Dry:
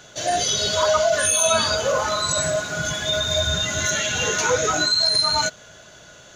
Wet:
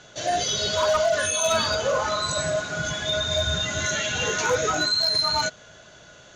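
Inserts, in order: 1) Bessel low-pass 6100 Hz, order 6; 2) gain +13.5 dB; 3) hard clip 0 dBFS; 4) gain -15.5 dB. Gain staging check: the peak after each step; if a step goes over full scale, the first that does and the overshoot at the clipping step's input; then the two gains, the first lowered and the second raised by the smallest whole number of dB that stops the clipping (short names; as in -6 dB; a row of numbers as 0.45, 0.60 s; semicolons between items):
-7.5, +6.0, 0.0, -15.5 dBFS; step 2, 6.0 dB; step 2 +7.5 dB, step 4 -9.5 dB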